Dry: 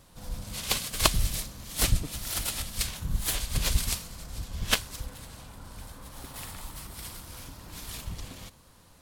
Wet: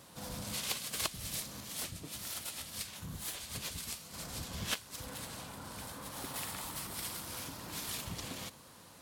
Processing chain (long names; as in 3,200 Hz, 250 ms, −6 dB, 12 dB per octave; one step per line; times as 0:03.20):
Bessel high-pass filter 160 Hz, order 2
downward compressor 4 to 1, threshold −39 dBFS, peak gain reduction 19 dB
0:01.60–0:04.14: flanger 1.5 Hz, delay 9.7 ms, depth 3.4 ms, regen −48%
level +3 dB